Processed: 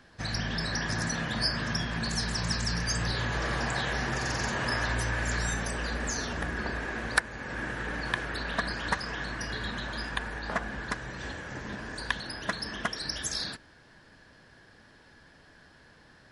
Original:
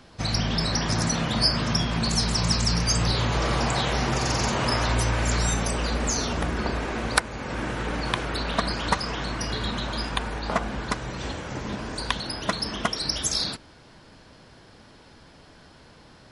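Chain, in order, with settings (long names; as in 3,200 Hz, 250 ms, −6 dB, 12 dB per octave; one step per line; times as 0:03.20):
parametric band 1,700 Hz +13.5 dB 0.25 octaves
level −7.5 dB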